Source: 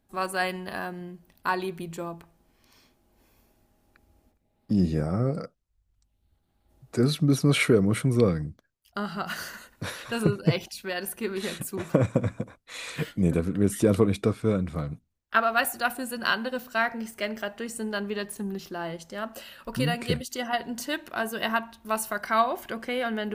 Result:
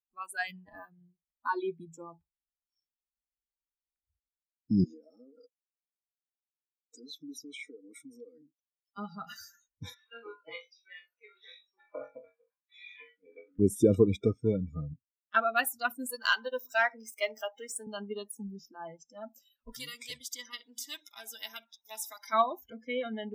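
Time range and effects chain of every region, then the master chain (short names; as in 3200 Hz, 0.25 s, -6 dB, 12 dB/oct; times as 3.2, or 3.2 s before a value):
4.84–8.98 HPF 270 Hz 24 dB/oct + high shelf 2800 Hz +3.5 dB + compressor 4:1, threshold -36 dBFS
9.94–13.59 HPF 850 Hz + air absorption 260 m + flutter echo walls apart 3.7 m, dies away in 0.41 s
16.06–17.87 HPF 440 Hz + upward compressor, threshold -34 dBFS + sample leveller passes 1
19.72–22.33 HPF 860 Hz 6 dB/oct + high shelf 7800 Hz -11 dB + spectral compressor 2:1
whole clip: per-bin expansion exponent 1.5; spectral noise reduction 25 dB; dynamic EQ 370 Hz, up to +5 dB, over -43 dBFS, Q 2.4; gain -2 dB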